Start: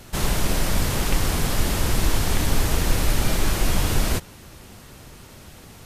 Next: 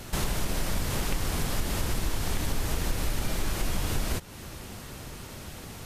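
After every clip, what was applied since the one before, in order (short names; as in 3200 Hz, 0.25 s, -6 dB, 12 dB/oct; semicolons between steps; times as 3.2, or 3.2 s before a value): compressor 3:1, threshold -30 dBFS, peak gain reduction 13 dB; gain +2.5 dB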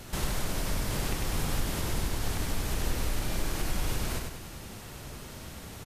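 feedback echo 98 ms, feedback 49%, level -4 dB; gain -3.5 dB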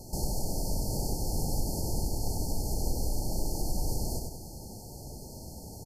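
brick-wall FIR band-stop 930–4200 Hz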